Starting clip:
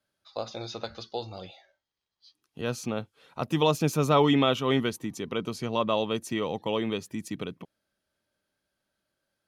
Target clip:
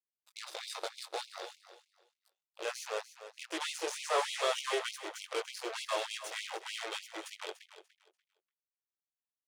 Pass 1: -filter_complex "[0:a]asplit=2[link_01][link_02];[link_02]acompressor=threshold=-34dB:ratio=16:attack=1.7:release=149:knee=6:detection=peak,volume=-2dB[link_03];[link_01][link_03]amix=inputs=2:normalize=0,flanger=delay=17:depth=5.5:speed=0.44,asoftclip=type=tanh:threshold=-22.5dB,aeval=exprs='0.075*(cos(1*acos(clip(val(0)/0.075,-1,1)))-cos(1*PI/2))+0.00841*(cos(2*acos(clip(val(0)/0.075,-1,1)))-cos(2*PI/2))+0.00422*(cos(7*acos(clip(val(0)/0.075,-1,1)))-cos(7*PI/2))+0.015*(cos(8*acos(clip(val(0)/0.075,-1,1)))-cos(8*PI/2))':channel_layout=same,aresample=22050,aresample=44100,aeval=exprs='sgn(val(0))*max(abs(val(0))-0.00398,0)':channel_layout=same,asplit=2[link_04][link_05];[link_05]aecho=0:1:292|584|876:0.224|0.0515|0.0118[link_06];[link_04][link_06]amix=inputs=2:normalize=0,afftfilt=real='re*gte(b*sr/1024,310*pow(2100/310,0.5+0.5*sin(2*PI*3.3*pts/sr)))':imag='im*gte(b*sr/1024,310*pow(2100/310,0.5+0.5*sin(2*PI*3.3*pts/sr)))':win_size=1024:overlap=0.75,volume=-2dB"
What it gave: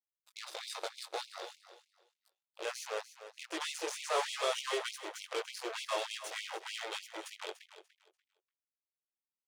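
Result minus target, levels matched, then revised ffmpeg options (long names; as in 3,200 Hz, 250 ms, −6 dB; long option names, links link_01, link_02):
soft clipping: distortion +12 dB
-filter_complex "[0:a]asplit=2[link_01][link_02];[link_02]acompressor=threshold=-34dB:ratio=16:attack=1.7:release=149:knee=6:detection=peak,volume=-2dB[link_03];[link_01][link_03]amix=inputs=2:normalize=0,flanger=delay=17:depth=5.5:speed=0.44,asoftclip=type=tanh:threshold=-13.5dB,aeval=exprs='0.075*(cos(1*acos(clip(val(0)/0.075,-1,1)))-cos(1*PI/2))+0.00841*(cos(2*acos(clip(val(0)/0.075,-1,1)))-cos(2*PI/2))+0.00422*(cos(7*acos(clip(val(0)/0.075,-1,1)))-cos(7*PI/2))+0.015*(cos(8*acos(clip(val(0)/0.075,-1,1)))-cos(8*PI/2))':channel_layout=same,aresample=22050,aresample=44100,aeval=exprs='sgn(val(0))*max(abs(val(0))-0.00398,0)':channel_layout=same,asplit=2[link_04][link_05];[link_05]aecho=0:1:292|584|876:0.224|0.0515|0.0118[link_06];[link_04][link_06]amix=inputs=2:normalize=0,afftfilt=real='re*gte(b*sr/1024,310*pow(2100/310,0.5+0.5*sin(2*PI*3.3*pts/sr)))':imag='im*gte(b*sr/1024,310*pow(2100/310,0.5+0.5*sin(2*PI*3.3*pts/sr)))':win_size=1024:overlap=0.75,volume=-2dB"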